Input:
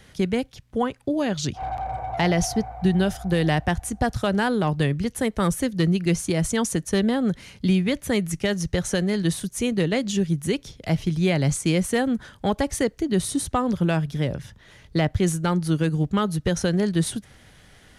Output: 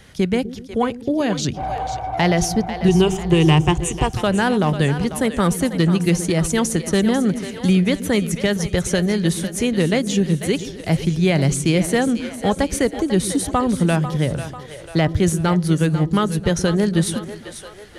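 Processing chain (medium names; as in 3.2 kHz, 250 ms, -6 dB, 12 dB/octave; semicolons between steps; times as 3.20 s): 2.88–4.09 s: rippled EQ curve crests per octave 0.7, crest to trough 15 dB; on a send: two-band feedback delay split 400 Hz, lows 123 ms, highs 494 ms, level -11 dB; on the sum: trim +4 dB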